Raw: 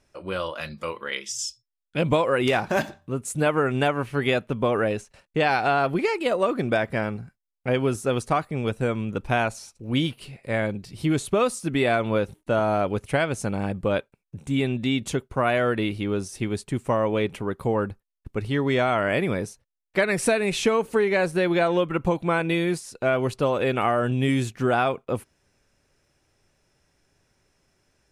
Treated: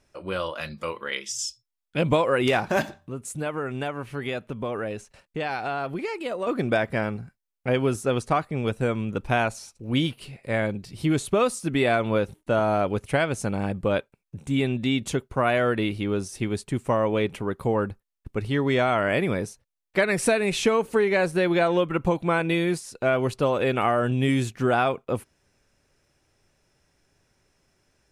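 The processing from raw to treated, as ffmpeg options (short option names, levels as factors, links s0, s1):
-filter_complex "[0:a]asettb=1/sr,asplit=3[s0][s1][s2];[s0]atrim=end=2.964[s3];[s1]atrim=start=2.96:end=6.47,asetpts=PTS-STARTPTS,afade=t=in:d=0.004:c=qsin,afade=t=out:st=3.506:d=0.004:c=qsin,acompressor=threshold=0.0126:ratio=1.5:attack=3.2:release=140:knee=1:detection=peak[s4];[s2]atrim=start=6.466[s5];[s3][s4]acrossfade=d=0.004:c1=hsin:c2=qsin[s6];[s6][s5]acrossfade=d=0.004:c1=qsin:c2=hsin,asettb=1/sr,asplit=3[s7][s8][s9];[s7]atrim=end=8.034[s10];[s8]atrim=start=8.03:end=8.64,asetpts=PTS-STARTPTS,afade=t=in:d=0.004:c=qsin,afade=t=out:st=0.606:d=0.004:c=qsin,highshelf=f=10000:g=-7[s11];[s9]atrim=start=8.636[s12];[s10][s11]acrossfade=d=0.004:c1=hsin:c2=qsin[s13];[s13][s12]acrossfade=d=0.004:c1=qsin:c2=hsin"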